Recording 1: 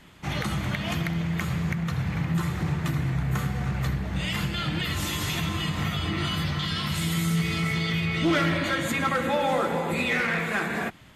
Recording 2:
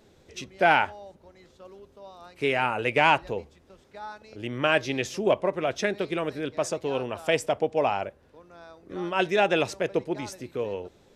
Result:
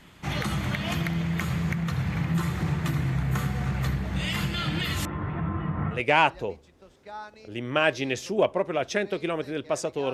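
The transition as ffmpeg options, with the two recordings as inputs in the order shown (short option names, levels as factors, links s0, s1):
-filter_complex "[0:a]asettb=1/sr,asplit=3[s0][s1][s2];[s0]atrim=end=5.054[s3];[s1]atrim=start=5.05:end=6.03,asetpts=PTS-STARTPTS,afade=t=in:d=0.004:c=qsin,afade=t=out:st=0.976:d=0.004:c=qsin,lowpass=f=1500:w=0.5412,lowpass=f=1500:w=1.3066[s4];[s2]atrim=start=6.026[s5];[s3][s4]acrossfade=d=0.004:c1=hsin:c2=qsin[s6];[s6][s5]acrossfade=d=0.004:c1=qsin:c2=hsin,apad=whole_dur=10.13,atrim=end=10.13,atrim=end=6.03,asetpts=PTS-STARTPTS[s7];[1:a]atrim=start=2.77:end=7.01,asetpts=PTS-STARTPTS[s8];[s7][s8]acrossfade=d=0.14:c1=tri:c2=tri"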